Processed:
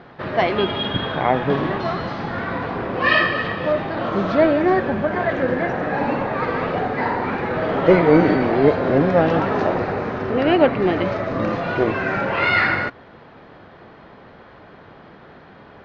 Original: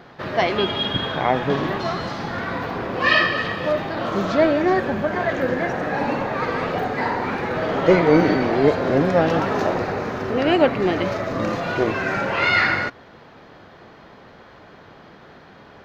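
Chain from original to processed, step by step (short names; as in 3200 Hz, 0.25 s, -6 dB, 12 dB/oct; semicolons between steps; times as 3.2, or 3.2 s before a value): air absorption 190 m; gain +2 dB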